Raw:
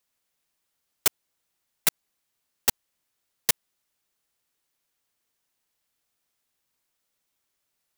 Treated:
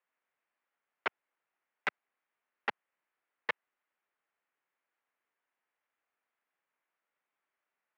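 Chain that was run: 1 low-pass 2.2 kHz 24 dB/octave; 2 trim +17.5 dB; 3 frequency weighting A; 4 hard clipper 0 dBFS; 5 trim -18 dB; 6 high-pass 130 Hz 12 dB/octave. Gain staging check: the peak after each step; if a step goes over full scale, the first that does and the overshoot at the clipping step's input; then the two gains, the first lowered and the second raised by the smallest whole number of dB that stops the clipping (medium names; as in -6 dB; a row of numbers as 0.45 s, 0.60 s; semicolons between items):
-16.0 dBFS, +1.5 dBFS, +3.0 dBFS, 0.0 dBFS, -18.0 dBFS, -17.5 dBFS; step 2, 3.0 dB; step 2 +14.5 dB, step 5 -15 dB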